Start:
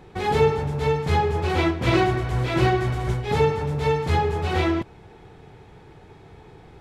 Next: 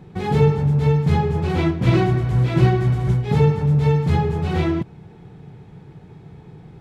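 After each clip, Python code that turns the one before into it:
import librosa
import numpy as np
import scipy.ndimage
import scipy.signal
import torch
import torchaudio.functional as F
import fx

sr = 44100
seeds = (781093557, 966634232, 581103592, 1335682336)

y = fx.peak_eq(x, sr, hz=160.0, db=15.0, octaves=1.4)
y = F.gain(torch.from_numpy(y), -3.5).numpy()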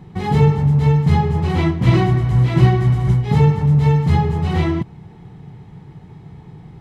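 y = x + 0.34 * np.pad(x, (int(1.0 * sr / 1000.0), 0))[:len(x)]
y = F.gain(torch.from_numpy(y), 1.5).numpy()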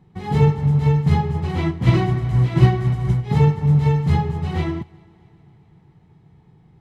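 y = fx.echo_heads(x, sr, ms=128, heads='second and third', feedback_pct=58, wet_db=-21.5)
y = fx.upward_expand(y, sr, threshold_db=-33.0, expansion=1.5)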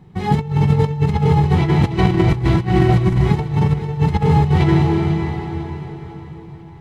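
y = fx.rev_plate(x, sr, seeds[0], rt60_s=4.1, hf_ratio=0.8, predelay_ms=75, drr_db=2.5)
y = fx.over_compress(y, sr, threshold_db=-19.0, ratio=-0.5)
y = fx.echo_feedback(y, sr, ms=498, feedback_pct=46, wet_db=-14)
y = F.gain(torch.from_numpy(y), 4.5).numpy()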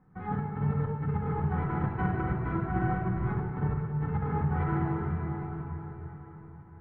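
y = fx.ladder_lowpass(x, sr, hz=1600.0, resonance_pct=65)
y = fx.room_shoebox(y, sr, seeds[1], volume_m3=2300.0, walls='mixed', distance_m=2.0)
y = F.gain(torch.from_numpy(y), -7.0).numpy()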